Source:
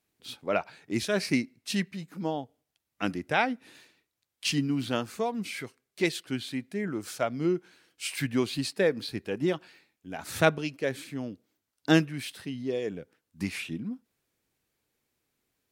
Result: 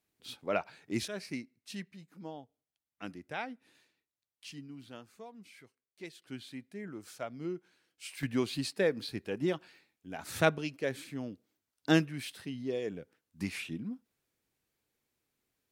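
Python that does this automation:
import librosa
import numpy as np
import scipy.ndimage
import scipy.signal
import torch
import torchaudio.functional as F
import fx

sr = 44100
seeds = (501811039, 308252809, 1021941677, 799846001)

y = fx.gain(x, sr, db=fx.steps((0.0, -4.0), (1.08, -13.0), (4.45, -19.0), (6.22, -11.0), (8.23, -4.0)))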